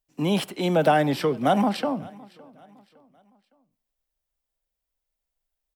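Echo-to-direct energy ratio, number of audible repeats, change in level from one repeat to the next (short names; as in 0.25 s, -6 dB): -23.0 dB, 2, -8.0 dB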